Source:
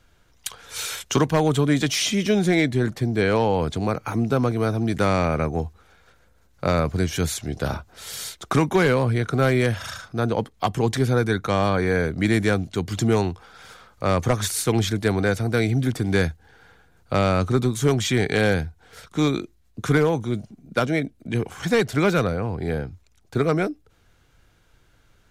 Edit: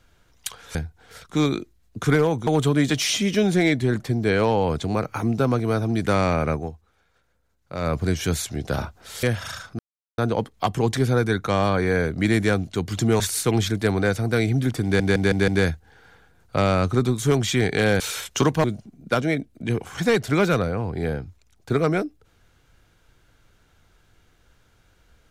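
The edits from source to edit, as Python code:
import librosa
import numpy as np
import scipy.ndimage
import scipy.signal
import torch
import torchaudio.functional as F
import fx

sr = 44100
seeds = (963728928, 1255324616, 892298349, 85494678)

y = fx.edit(x, sr, fx.swap(start_s=0.75, length_s=0.64, other_s=18.57, other_length_s=1.72),
    fx.fade_down_up(start_s=5.45, length_s=1.42, db=-10.5, fade_s=0.19),
    fx.cut(start_s=8.15, length_s=1.47),
    fx.insert_silence(at_s=10.18, length_s=0.39),
    fx.cut(start_s=13.2, length_s=1.21),
    fx.stutter(start_s=16.05, slice_s=0.16, count=5), tone=tone)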